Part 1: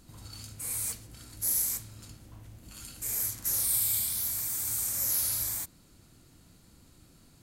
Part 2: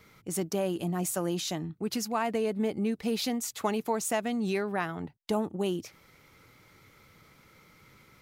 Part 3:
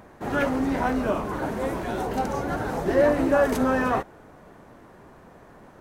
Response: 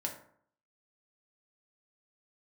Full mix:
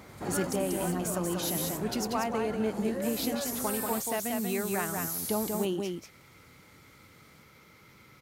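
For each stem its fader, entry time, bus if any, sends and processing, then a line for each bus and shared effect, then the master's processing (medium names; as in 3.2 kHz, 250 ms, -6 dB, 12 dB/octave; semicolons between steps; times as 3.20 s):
-7.5 dB, 0.00 s, no send, no echo send, none
-2.5 dB, 0.00 s, no send, echo send -4.5 dB, none
-8.5 dB, 0.00 s, no send, no echo send, compression 2:1, threshold -30 dBFS, peak gain reduction 8.5 dB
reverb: none
echo: delay 188 ms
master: high-pass 55 Hz; gain riding 0.5 s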